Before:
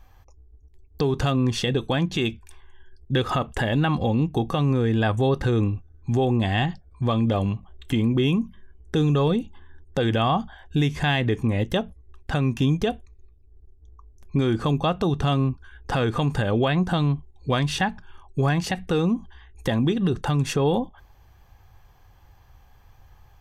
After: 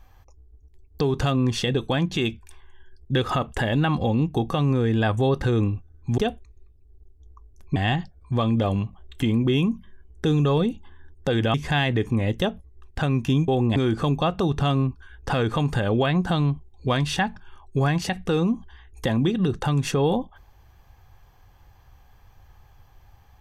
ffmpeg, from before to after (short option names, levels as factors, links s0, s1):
-filter_complex "[0:a]asplit=6[s0][s1][s2][s3][s4][s5];[s0]atrim=end=6.182[s6];[s1]atrim=start=12.798:end=14.382[s7];[s2]atrim=start=6.458:end=10.242[s8];[s3]atrim=start=10.858:end=12.802[s9];[s4]atrim=start=6.178:end=6.462[s10];[s5]atrim=start=14.378[s11];[s6][s7]acrossfade=d=0.004:c1=hsin:c2=hsin[s12];[s12][s8]acrossfade=d=0.004:c1=hsin:c2=hsin[s13];[s13][s9]acrossfade=d=0.004:c1=hsin:c2=hsin[s14];[s14][s10]acrossfade=d=0.004:c1=hsin:c2=hsin[s15];[s15][s11]acrossfade=d=0.004:c1=hsin:c2=hsin"